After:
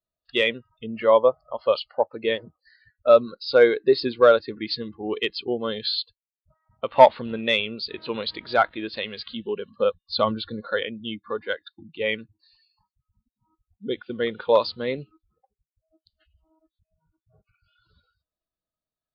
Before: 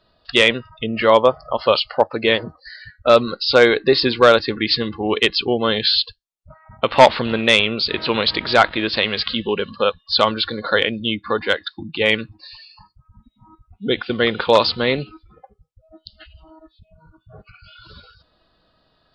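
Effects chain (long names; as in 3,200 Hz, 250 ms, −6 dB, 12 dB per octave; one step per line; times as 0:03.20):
0:09.78–0:10.61: low-shelf EQ 280 Hz +8.5 dB
every bin expanded away from the loudest bin 1.5 to 1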